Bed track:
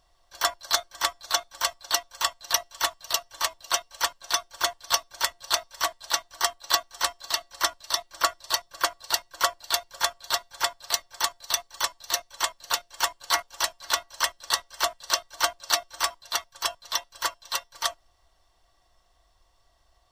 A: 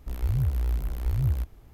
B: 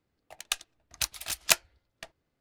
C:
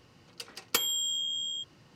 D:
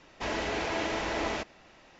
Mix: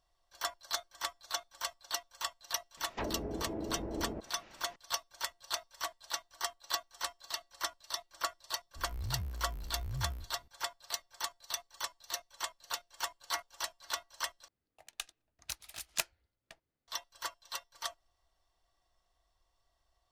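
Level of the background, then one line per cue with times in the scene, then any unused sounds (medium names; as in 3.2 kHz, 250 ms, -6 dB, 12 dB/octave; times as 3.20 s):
bed track -12 dB
2.77 s: add D -1 dB + low-pass that closes with the level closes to 370 Hz, closed at -28.5 dBFS
8.75 s: add A -17 dB + every event in the spectrogram widened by 120 ms
14.48 s: replace with B -11 dB
not used: C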